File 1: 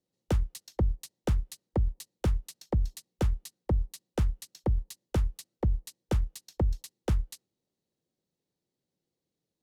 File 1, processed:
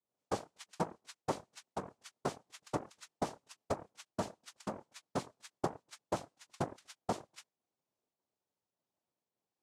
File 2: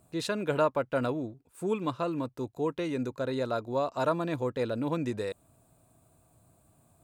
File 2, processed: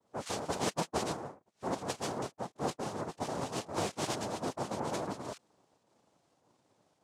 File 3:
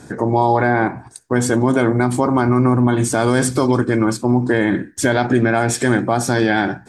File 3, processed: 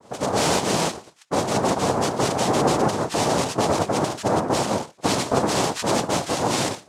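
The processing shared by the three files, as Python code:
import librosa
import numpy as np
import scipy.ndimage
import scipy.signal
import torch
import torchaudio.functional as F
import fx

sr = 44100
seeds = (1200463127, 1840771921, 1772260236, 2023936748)

y = fx.volume_shaper(x, sr, bpm=104, per_beat=1, depth_db=-5, release_ms=81.0, shape='slow start')
y = fx.dispersion(y, sr, late='highs', ms=58.0, hz=1700.0)
y = fx.noise_vocoder(y, sr, seeds[0], bands=2)
y = y * 10.0 ** (-5.5 / 20.0)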